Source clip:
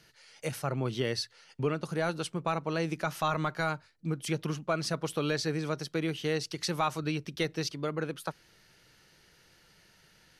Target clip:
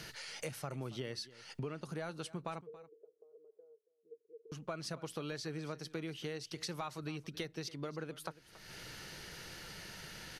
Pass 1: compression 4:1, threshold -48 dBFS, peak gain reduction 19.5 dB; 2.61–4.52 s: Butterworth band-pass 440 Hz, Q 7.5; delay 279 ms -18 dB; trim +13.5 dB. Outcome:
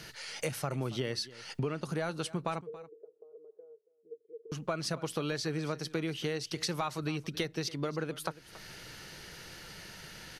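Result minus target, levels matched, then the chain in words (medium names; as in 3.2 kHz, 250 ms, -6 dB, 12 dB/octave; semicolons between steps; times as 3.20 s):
compression: peak gain reduction -7.5 dB
compression 4:1, threshold -58 dBFS, peak gain reduction 27 dB; 2.61–4.52 s: Butterworth band-pass 440 Hz, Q 7.5; delay 279 ms -18 dB; trim +13.5 dB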